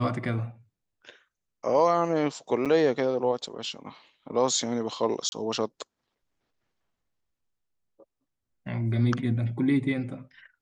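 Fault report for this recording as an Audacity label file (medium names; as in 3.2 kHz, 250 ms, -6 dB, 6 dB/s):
2.650000	2.660000	dropout 7.1 ms
5.290000	5.320000	dropout 31 ms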